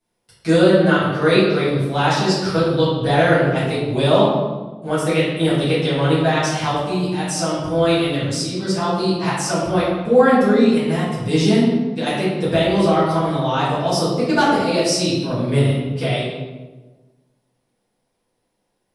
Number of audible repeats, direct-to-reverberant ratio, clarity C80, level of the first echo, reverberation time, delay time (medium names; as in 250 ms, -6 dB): no echo, -12.5 dB, 2.0 dB, no echo, 1.3 s, no echo